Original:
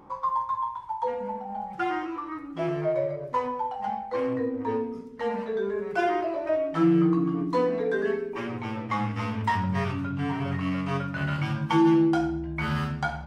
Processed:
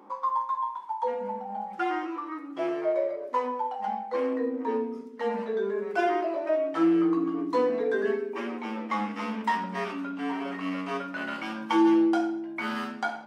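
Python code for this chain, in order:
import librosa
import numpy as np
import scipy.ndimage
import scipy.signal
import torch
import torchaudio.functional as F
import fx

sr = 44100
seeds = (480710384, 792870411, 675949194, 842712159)

y = scipy.signal.sosfilt(scipy.signal.ellip(4, 1.0, 40, 210.0, 'highpass', fs=sr, output='sos'), x)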